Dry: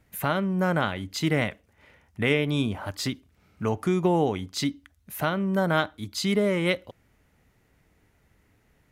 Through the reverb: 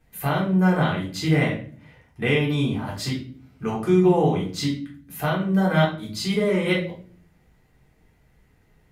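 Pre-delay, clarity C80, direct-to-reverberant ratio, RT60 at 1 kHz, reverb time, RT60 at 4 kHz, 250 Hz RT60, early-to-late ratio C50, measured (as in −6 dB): 3 ms, 12.0 dB, −6.0 dB, 0.35 s, 0.45 s, 0.35 s, 0.80 s, 6.5 dB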